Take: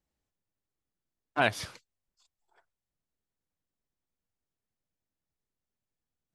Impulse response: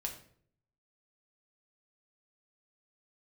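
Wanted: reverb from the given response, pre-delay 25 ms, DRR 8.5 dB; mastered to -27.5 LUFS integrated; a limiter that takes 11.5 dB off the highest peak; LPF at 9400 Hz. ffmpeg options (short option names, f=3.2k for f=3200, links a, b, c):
-filter_complex "[0:a]lowpass=9.4k,alimiter=limit=-21dB:level=0:latency=1,asplit=2[a][b];[1:a]atrim=start_sample=2205,adelay=25[c];[b][c]afir=irnorm=-1:irlink=0,volume=-8.5dB[d];[a][d]amix=inputs=2:normalize=0,volume=10.5dB"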